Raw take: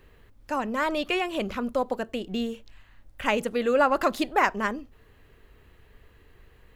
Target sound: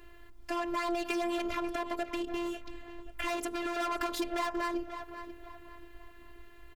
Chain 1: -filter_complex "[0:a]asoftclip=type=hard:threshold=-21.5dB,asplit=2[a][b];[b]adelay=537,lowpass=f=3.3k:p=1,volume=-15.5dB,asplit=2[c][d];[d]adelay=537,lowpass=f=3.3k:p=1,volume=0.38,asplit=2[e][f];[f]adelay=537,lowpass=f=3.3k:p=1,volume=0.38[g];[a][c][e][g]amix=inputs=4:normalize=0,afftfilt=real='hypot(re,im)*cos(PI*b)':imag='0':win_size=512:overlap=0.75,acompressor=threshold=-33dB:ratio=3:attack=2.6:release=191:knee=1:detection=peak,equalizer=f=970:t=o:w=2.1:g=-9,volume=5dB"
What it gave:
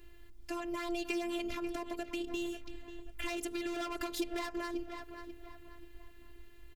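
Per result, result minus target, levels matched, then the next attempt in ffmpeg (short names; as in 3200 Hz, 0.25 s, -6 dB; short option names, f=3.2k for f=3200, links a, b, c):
1000 Hz band -4.5 dB; hard clip: distortion -5 dB
-filter_complex "[0:a]asoftclip=type=hard:threshold=-21.5dB,asplit=2[a][b];[b]adelay=537,lowpass=f=3.3k:p=1,volume=-15.5dB,asplit=2[c][d];[d]adelay=537,lowpass=f=3.3k:p=1,volume=0.38,asplit=2[e][f];[f]adelay=537,lowpass=f=3.3k:p=1,volume=0.38[g];[a][c][e][g]amix=inputs=4:normalize=0,afftfilt=real='hypot(re,im)*cos(PI*b)':imag='0':win_size=512:overlap=0.75,acompressor=threshold=-33dB:ratio=3:attack=2.6:release=191:knee=1:detection=peak,equalizer=f=970:t=o:w=2.1:g=2.5,volume=5dB"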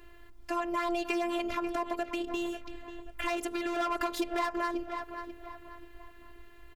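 hard clip: distortion -5 dB
-filter_complex "[0:a]asoftclip=type=hard:threshold=-28dB,asplit=2[a][b];[b]adelay=537,lowpass=f=3.3k:p=1,volume=-15.5dB,asplit=2[c][d];[d]adelay=537,lowpass=f=3.3k:p=1,volume=0.38,asplit=2[e][f];[f]adelay=537,lowpass=f=3.3k:p=1,volume=0.38[g];[a][c][e][g]amix=inputs=4:normalize=0,afftfilt=real='hypot(re,im)*cos(PI*b)':imag='0':win_size=512:overlap=0.75,acompressor=threshold=-33dB:ratio=3:attack=2.6:release=191:knee=1:detection=peak,equalizer=f=970:t=o:w=2.1:g=2.5,volume=5dB"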